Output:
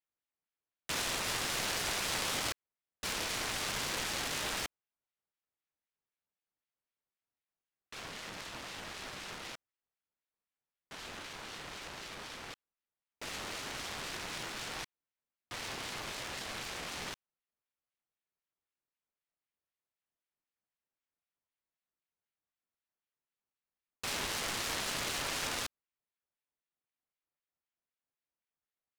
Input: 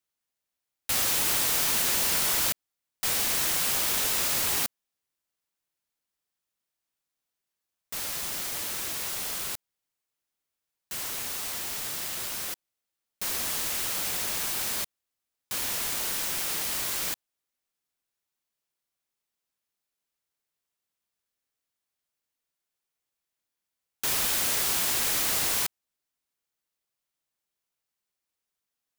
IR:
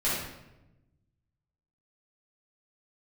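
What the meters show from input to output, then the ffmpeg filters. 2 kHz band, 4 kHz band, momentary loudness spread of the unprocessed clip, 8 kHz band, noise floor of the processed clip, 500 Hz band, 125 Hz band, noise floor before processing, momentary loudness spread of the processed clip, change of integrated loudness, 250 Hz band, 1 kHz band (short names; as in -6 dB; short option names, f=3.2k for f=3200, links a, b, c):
-4.5 dB, -6.5 dB, 11 LU, -12.0 dB, under -85 dBFS, -3.5 dB, -3.5 dB, under -85 dBFS, 13 LU, -11.0 dB, -3.5 dB, -4.0 dB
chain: -af "adynamicsmooth=sensitivity=5.5:basefreq=1.8k,aeval=exprs='val(0)*sin(2*PI*1300*n/s+1300*0.85/3.9*sin(2*PI*3.9*n/s))':c=same"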